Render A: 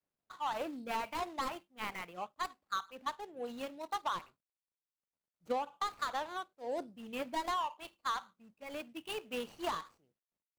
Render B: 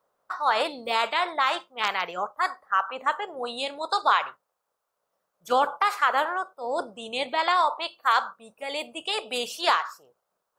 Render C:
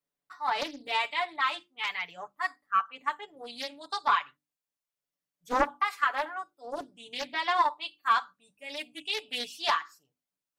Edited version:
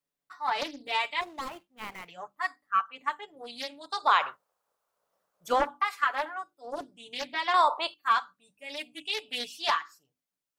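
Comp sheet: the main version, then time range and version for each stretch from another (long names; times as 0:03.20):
C
0:01.21–0:02.08: punch in from A
0:04.06–0:05.57: punch in from B, crossfade 0.24 s
0:07.54–0:07.94: punch in from B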